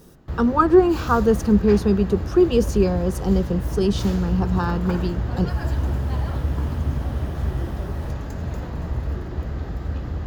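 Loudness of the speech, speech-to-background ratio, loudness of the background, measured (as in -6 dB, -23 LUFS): -20.5 LUFS, 7.0 dB, -27.5 LUFS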